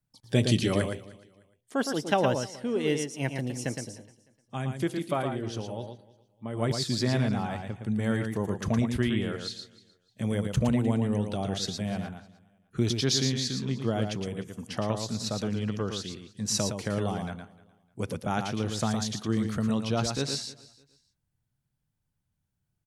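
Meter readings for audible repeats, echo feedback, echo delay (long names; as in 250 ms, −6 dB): 4, repeats not evenly spaced, 114 ms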